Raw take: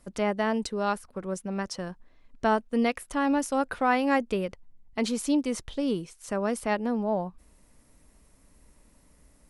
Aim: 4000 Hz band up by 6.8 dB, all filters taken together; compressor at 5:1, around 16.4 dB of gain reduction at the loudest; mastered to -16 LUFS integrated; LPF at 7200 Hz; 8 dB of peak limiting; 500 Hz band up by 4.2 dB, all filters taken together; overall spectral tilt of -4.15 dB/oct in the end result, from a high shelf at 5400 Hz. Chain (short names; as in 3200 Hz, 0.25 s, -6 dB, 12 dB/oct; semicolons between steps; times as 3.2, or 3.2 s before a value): LPF 7200 Hz; bell 500 Hz +5 dB; bell 4000 Hz +6.5 dB; high shelf 5400 Hz +6.5 dB; compressor 5:1, threshold -36 dBFS; gain +25 dB; limiter -5.5 dBFS